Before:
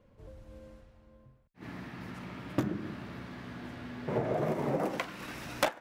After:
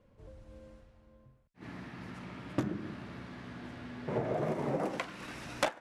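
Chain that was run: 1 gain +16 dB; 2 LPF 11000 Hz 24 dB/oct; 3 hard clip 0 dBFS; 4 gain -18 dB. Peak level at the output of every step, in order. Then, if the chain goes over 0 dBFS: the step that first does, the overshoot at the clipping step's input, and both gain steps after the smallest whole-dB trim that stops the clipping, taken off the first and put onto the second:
-3.5, -2.0, -2.0, -20.0 dBFS; no overload

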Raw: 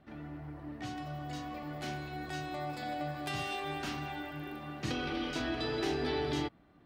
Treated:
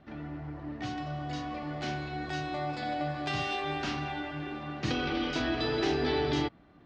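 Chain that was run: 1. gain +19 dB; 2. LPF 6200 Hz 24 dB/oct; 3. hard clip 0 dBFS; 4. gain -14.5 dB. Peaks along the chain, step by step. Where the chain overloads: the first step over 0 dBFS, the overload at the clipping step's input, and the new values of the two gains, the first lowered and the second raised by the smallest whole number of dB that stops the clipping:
-3.5, -3.5, -3.5, -18.0 dBFS; no overload

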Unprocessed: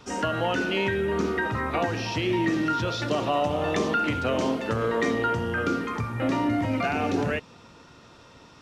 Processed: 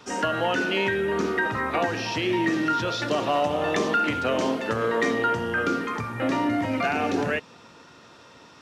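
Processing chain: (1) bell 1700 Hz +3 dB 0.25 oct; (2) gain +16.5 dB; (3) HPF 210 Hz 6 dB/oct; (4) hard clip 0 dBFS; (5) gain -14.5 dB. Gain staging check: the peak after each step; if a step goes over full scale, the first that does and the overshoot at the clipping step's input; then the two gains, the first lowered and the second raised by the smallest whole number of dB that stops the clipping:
-12.5, +4.0, +3.0, 0.0, -14.5 dBFS; step 2, 3.0 dB; step 2 +13.5 dB, step 5 -11.5 dB

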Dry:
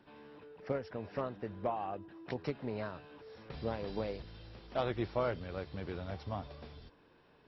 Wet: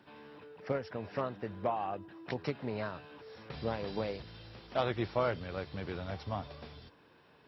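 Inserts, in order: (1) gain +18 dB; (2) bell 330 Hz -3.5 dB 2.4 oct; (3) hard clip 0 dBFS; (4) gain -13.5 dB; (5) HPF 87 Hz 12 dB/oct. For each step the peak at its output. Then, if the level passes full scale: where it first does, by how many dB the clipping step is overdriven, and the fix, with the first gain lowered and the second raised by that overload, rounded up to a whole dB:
-2.5, -4.5, -4.5, -18.0, -19.0 dBFS; no overload

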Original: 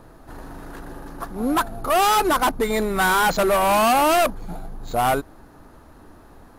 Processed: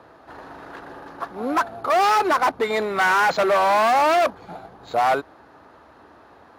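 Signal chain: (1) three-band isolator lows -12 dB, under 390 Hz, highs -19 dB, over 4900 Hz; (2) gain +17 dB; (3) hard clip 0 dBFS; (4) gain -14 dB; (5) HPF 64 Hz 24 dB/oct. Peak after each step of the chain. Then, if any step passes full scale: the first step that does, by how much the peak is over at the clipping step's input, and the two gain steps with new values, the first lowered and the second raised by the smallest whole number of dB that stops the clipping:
-9.0, +8.0, 0.0, -14.0, -12.0 dBFS; step 2, 8.0 dB; step 2 +9 dB, step 4 -6 dB

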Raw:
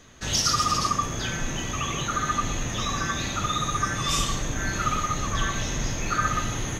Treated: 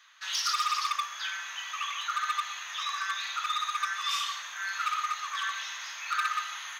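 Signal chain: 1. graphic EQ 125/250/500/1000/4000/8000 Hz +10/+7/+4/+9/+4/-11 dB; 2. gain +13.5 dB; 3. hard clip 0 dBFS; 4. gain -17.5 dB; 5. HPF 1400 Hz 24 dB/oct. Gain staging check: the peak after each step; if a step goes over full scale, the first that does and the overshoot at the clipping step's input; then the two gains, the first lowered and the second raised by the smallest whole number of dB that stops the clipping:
-5.0, +8.5, 0.0, -17.5, -16.0 dBFS; step 2, 8.5 dB; step 2 +4.5 dB, step 4 -8.5 dB

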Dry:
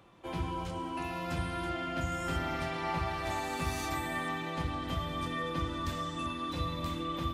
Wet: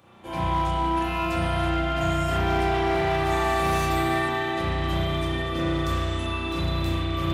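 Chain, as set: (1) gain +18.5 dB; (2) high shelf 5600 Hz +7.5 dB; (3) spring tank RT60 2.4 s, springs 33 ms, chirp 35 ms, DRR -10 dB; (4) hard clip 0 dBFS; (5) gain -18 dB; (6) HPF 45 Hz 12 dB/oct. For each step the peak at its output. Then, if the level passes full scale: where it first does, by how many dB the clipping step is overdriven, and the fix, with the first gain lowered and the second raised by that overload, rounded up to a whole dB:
-3.0, -3.0, +7.5, 0.0, -18.0, -13.5 dBFS; step 3, 7.5 dB; step 1 +10.5 dB, step 5 -10 dB

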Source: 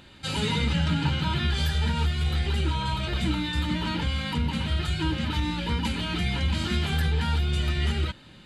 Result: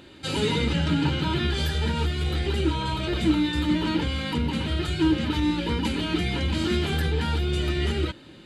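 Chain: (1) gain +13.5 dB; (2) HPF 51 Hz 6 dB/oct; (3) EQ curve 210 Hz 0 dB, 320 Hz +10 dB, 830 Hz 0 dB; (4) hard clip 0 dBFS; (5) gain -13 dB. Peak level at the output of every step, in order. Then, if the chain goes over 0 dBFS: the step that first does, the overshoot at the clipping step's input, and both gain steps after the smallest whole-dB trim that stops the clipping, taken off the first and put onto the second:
-0.5, -1.0, +3.5, 0.0, -13.0 dBFS; step 3, 3.5 dB; step 1 +9.5 dB, step 5 -9 dB

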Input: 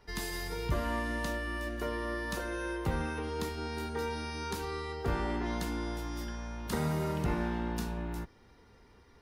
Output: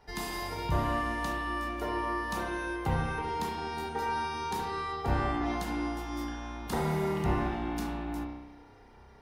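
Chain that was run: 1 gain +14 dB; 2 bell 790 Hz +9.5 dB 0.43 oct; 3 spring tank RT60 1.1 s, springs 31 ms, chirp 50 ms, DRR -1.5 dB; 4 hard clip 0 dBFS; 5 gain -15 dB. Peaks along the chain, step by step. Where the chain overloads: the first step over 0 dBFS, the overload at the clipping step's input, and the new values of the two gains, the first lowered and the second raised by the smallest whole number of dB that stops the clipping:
-5.0, -4.0, -1.5, -1.5, -16.5 dBFS; no overload

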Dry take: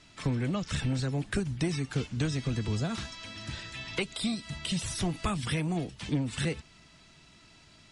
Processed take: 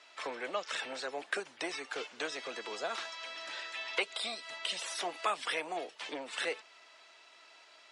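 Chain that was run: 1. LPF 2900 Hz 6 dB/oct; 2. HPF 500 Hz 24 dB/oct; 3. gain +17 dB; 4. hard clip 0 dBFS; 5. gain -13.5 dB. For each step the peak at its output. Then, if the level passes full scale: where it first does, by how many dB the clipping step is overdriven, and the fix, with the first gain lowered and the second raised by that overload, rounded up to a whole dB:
-19.5, -22.0, -5.0, -5.0, -18.5 dBFS; no overload

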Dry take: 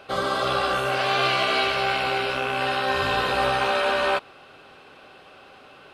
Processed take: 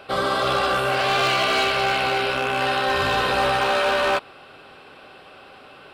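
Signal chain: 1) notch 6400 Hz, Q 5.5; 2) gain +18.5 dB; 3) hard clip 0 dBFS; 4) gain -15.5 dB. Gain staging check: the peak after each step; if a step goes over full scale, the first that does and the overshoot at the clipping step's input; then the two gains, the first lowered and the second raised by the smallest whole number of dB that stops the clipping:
-9.5, +9.0, 0.0, -15.5 dBFS; step 2, 9.0 dB; step 2 +9.5 dB, step 4 -6.5 dB

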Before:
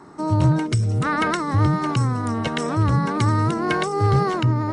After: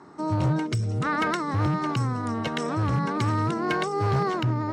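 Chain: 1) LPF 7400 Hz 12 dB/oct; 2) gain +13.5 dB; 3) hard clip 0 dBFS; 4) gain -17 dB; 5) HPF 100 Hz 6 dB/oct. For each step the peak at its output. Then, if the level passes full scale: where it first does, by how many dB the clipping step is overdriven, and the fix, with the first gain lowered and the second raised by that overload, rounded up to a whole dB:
-9.0, +4.5, 0.0, -17.0, -14.0 dBFS; step 2, 4.5 dB; step 2 +8.5 dB, step 4 -12 dB

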